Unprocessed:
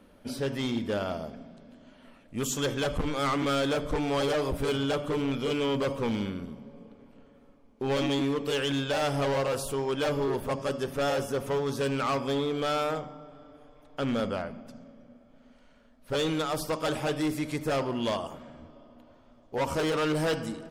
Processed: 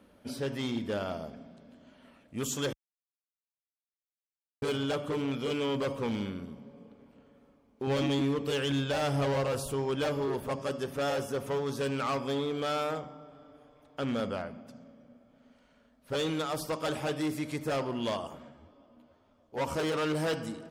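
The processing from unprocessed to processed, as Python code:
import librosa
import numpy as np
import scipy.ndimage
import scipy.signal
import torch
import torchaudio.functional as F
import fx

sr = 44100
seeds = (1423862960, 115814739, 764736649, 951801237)

y = fx.low_shelf(x, sr, hz=150.0, db=9.0, at=(7.87, 10.08))
y = fx.ensemble(y, sr, at=(18.48, 19.56), fade=0.02)
y = fx.edit(y, sr, fx.silence(start_s=2.73, length_s=1.89), tone=tone)
y = scipy.signal.sosfilt(scipy.signal.butter(2, 47.0, 'highpass', fs=sr, output='sos'), y)
y = F.gain(torch.from_numpy(y), -3.0).numpy()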